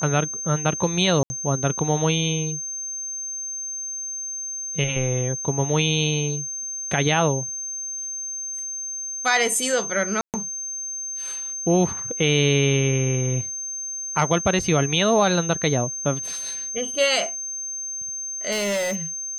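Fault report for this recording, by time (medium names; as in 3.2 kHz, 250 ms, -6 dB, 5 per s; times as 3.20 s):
whine 6.3 kHz -28 dBFS
1.23–1.30 s: dropout 70 ms
10.21–10.34 s: dropout 128 ms
14.59 s: dropout 3.5 ms
18.51–18.96 s: clipped -21 dBFS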